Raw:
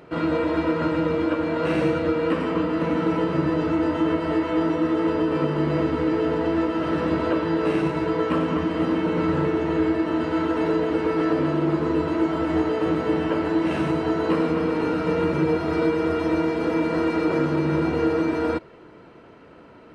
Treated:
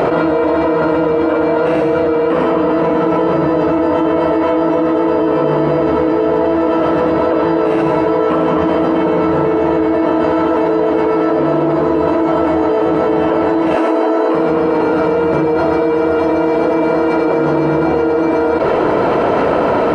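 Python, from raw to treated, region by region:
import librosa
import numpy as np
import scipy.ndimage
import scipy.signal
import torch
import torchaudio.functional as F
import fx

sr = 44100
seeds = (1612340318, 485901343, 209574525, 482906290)

y = fx.chain(x, sr, fx.brickwall_highpass(low_hz=230.0),
    fx.notch(hz=3600.0, q=8.3), at=(13.75, 14.34))
y = fx.peak_eq(y, sr, hz=680.0, db=12.5, octaves=1.7)
y = fx.env_flatten(y, sr, amount_pct=100)
y = y * librosa.db_to_amplitude(-2.0)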